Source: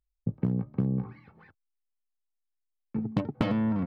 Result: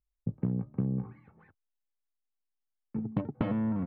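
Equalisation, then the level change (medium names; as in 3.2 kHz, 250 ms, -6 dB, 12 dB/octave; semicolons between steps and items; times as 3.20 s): distance through air 490 m; -2.5 dB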